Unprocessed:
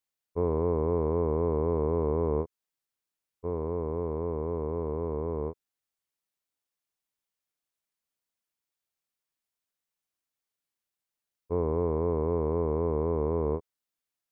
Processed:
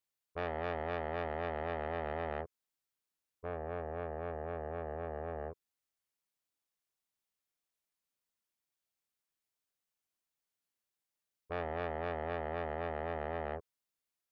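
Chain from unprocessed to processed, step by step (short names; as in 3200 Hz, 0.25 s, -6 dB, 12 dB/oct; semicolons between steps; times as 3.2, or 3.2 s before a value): core saturation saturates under 2000 Hz; gain -2 dB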